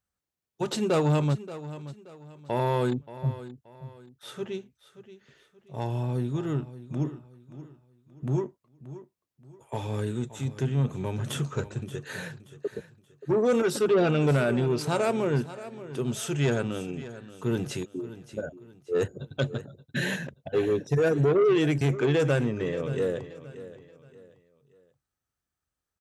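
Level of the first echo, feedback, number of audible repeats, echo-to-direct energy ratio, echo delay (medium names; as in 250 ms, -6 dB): -15.0 dB, 34%, 3, -14.5 dB, 578 ms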